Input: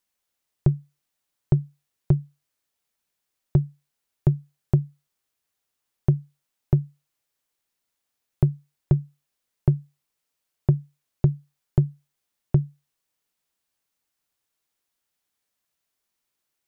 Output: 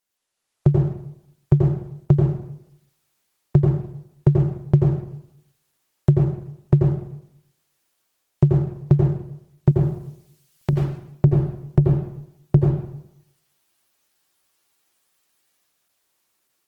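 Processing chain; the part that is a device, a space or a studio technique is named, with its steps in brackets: 9.71–10.73 tilt shelf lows -9 dB, about 1200 Hz; far-field microphone of a smart speaker (reverb RT60 0.80 s, pre-delay 81 ms, DRR -1.5 dB; HPF 82 Hz 6 dB/oct; AGC gain up to 8 dB; Opus 16 kbps 48000 Hz)

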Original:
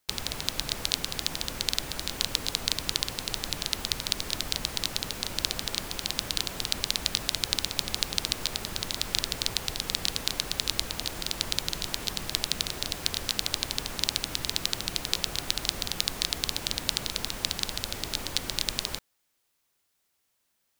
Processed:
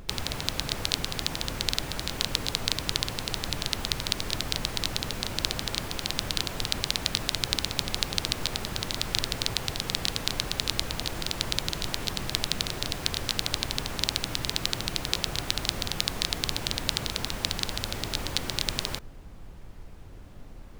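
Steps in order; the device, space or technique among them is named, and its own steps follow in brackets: car interior (bell 120 Hz +4 dB 0.66 oct; high shelf 4200 Hz -6 dB; brown noise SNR 11 dB); gain +3 dB

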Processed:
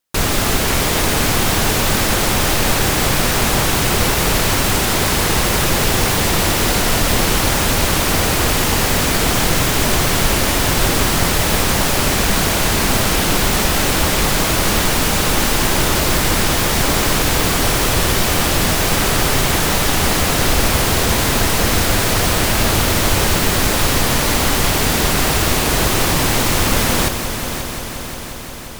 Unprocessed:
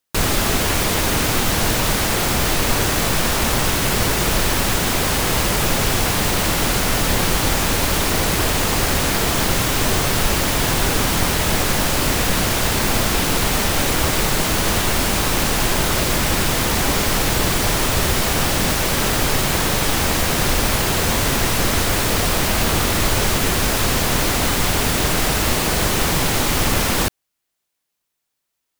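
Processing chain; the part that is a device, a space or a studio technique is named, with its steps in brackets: multi-head tape echo (multi-head echo 0.177 s, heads first and third, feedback 74%, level -11 dB; wow and flutter); gain +1.5 dB

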